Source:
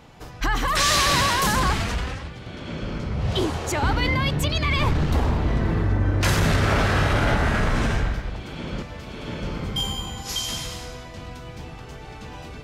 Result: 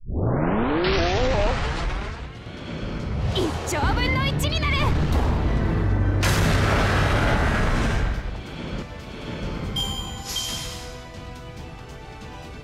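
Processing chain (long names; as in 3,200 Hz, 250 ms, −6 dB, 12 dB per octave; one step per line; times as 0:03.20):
turntable start at the beginning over 2.56 s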